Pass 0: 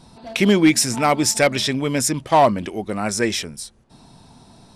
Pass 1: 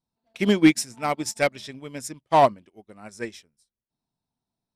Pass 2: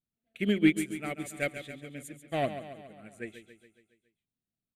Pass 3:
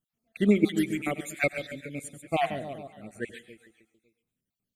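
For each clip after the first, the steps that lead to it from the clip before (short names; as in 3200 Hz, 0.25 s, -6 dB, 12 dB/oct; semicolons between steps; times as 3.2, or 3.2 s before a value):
upward expander 2.5:1, over -36 dBFS
fixed phaser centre 2300 Hz, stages 4; on a send: feedback echo 0.139 s, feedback 57%, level -11 dB; on the sum: gain -6 dB
random spectral dropouts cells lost 45%; reverb RT60 0.45 s, pre-delay 89 ms, DRR 15.5 dB; gain +6.5 dB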